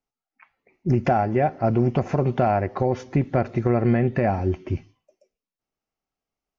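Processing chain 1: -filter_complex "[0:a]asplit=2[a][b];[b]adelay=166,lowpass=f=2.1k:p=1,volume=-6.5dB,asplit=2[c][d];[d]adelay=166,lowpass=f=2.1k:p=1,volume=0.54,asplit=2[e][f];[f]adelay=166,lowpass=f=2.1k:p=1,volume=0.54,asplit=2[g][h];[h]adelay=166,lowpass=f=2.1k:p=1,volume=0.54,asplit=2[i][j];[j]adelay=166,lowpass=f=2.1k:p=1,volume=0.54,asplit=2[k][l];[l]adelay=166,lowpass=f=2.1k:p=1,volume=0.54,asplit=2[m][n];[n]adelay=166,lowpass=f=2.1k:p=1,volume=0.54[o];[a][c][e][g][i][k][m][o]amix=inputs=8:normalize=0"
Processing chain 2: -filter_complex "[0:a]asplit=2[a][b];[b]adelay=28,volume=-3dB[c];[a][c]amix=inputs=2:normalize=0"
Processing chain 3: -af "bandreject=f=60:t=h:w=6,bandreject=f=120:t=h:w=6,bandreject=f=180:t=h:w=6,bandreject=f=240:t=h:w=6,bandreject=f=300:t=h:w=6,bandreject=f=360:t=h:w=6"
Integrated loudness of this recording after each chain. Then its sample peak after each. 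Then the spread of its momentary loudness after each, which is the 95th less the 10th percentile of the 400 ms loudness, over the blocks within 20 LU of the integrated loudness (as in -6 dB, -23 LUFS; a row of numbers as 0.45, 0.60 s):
-21.5, -21.5, -23.5 LUFS; -7.0, -6.0, -9.0 dBFS; 10, 7, 5 LU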